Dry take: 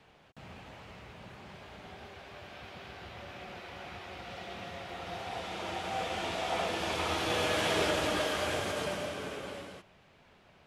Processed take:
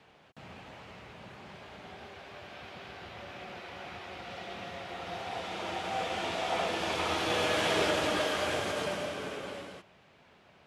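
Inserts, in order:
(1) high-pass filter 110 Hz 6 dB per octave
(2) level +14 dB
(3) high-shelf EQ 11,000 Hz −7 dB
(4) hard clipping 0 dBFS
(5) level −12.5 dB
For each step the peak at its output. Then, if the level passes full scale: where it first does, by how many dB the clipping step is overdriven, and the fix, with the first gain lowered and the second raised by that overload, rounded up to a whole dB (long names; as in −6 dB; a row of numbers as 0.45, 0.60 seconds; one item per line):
−18.5, −4.5, −4.5, −4.5, −17.0 dBFS
no step passes full scale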